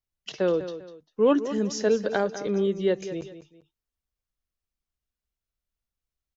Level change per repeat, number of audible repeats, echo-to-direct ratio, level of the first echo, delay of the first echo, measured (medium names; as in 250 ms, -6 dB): -9.5 dB, 2, -11.5 dB, -12.0 dB, 198 ms